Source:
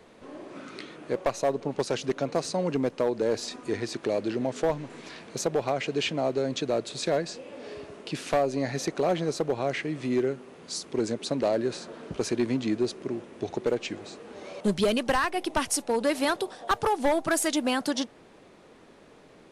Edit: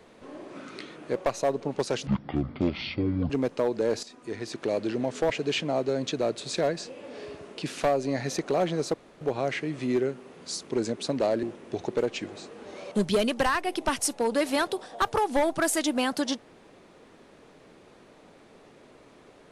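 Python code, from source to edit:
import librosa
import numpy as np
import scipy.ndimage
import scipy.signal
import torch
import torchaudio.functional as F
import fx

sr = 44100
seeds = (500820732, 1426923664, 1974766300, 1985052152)

y = fx.edit(x, sr, fx.speed_span(start_s=2.07, length_s=0.64, speed=0.52),
    fx.fade_in_from(start_s=3.44, length_s=0.71, floor_db=-13.0),
    fx.cut(start_s=4.71, length_s=1.08),
    fx.insert_room_tone(at_s=9.43, length_s=0.27),
    fx.cut(start_s=11.65, length_s=1.47), tone=tone)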